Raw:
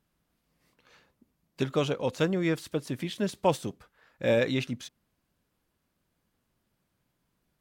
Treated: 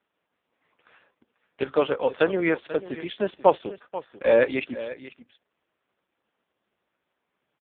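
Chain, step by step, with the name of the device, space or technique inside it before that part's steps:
satellite phone (band-pass filter 400–3,300 Hz; single-tap delay 489 ms −15 dB; level +9 dB; AMR narrowband 4.75 kbit/s 8,000 Hz)

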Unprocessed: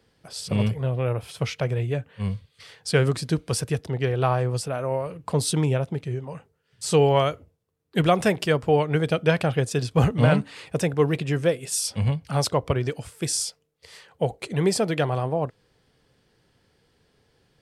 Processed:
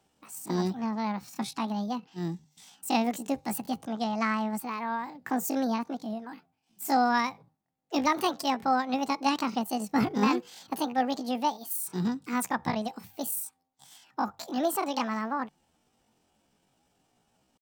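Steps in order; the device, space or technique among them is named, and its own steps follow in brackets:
0:04.03–0:04.60: low-pass filter 7,600 Hz 12 dB per octave
chipmunk voice (pitch shifter +9.5 semitones)
mains-hum notches 50/100/150 Hz
level −6 dB

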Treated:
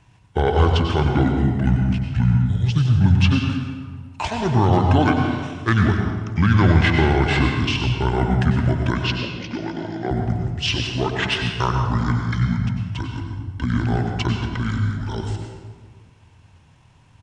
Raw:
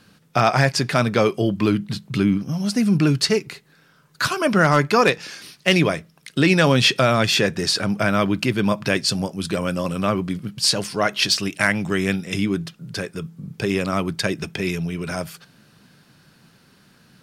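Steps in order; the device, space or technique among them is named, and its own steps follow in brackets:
0:09.07–0:10.11: Chebyshev band-pass filter 410–7,700 Hz, order 2
monster voice (pitch shifter −8.5 semitones; low-shelf EQ 180 Hz +7 dB; convolution reverb RT60 1.5 s, pre-delay 89 ms, DRR 2.5 dB)
level −4 dB

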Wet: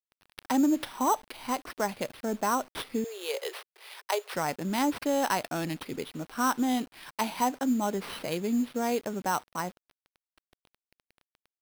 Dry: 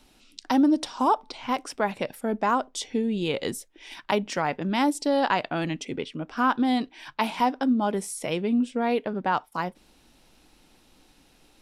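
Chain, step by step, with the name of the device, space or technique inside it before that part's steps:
early 8-bit sampler (sample-rate reduction 7,000 Hz, jitter 0%; bit reduction 8 bits)
0:03.04–0:04.34: Butterworth high-pass 390 Hz 72 dB per octave
level −4 dB

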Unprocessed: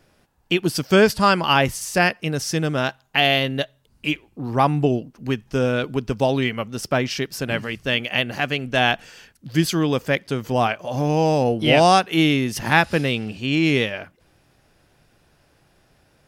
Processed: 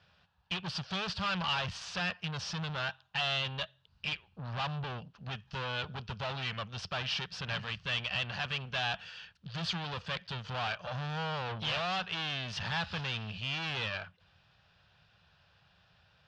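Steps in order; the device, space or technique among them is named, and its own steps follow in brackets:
scooped metal amplifier (tube saturation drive 29 dB, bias 0.65; loudspeaker in its box 78–3,800 Hz, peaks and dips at 92 Hz +5 dB, 180 Hz +9 dB, 2,100 Hz −10 dB; guitar amp tone stack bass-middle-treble 10-0-10)
level +8 dB

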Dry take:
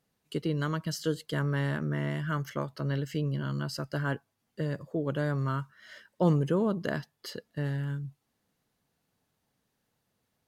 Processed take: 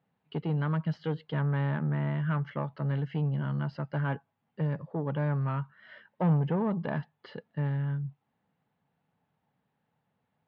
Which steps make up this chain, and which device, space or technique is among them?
guitar amplifier (tube saturation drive 24 dB, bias 0.2; bass and treble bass +2 dB, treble −14 dB; loudspeaker in its box 97–3,800 Hz, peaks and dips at 160 Hz +5 dB, 340 Hz −5 dB, 840 Hz +7 dB)

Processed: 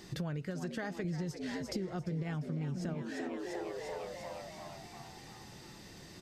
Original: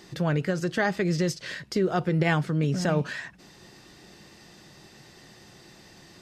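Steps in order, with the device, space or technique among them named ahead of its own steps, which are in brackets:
0:01.04–0:02.94: low-shelf EQ 240 Hz +8 dB
echo with shifted repeats 347 ms, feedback 61%, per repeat +88 Hz, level −9.5 dB
ASMR close-microphone chain (low-shelf EQ 200 Hz +7.5 dB; downward compressor 6 to 1, threshold −32 dBFS, peak gain reduction 19 dB; high-shelf EQ 6,300 Hz +4.5 dB)
level −4 dB

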